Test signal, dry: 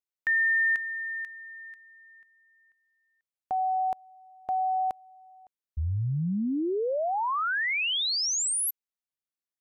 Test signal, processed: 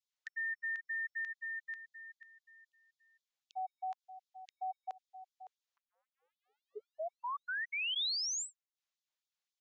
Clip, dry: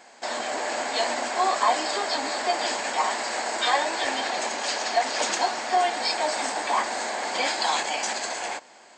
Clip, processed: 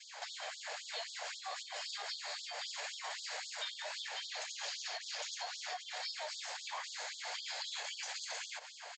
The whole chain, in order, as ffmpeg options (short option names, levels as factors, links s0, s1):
-af "adynamicequalizer=threshold=0.0126:dfrequency=890:dqfactor=0.91:tfrequency=890:tqfactor=0.91:attack=5:release=100:ratio=0.375:range=3:mode=cutabove:tftype=bell,acompressor=threshold=0.0126:ratio=16:attack=0.42:release=122:knee=1:detection=rms,aresample=16000,aresample=44100,equalizer=f=3600:w=1.9:g=3,afftfilt=real='re*gte(b*sr/1024,410*pow(3300/410,0.5+0.5*sin(2*PI*3.8*pts/sr)))':imag='im*gte(b*sr/1024,410*pow(3300/410,0.5+0.5*sin(2*PI*3.8*pts/sr)))':win_size=1024:overlap=0.75,volume=1.41"